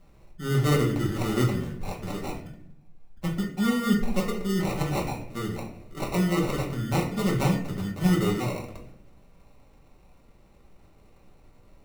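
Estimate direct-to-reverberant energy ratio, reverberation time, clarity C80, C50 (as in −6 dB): −2.5 dB, 0.70 s, 10.5 dB, 7.0 dB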